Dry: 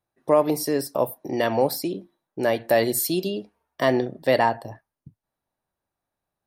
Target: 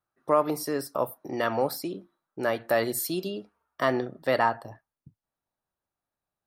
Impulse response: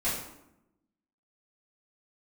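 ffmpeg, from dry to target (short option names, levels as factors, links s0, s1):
-af "asetnsamples=n=441:p=0,asendcmd='4.69 equalizer g 3.5',equalizer=f=1300:w=2.9:g=13.5,volume=0.501"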